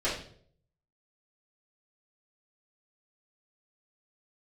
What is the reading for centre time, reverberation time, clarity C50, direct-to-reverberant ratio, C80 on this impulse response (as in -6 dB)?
37 ms, 0.60 s, 4.5 dB, -11.5 dB, 9.0 dB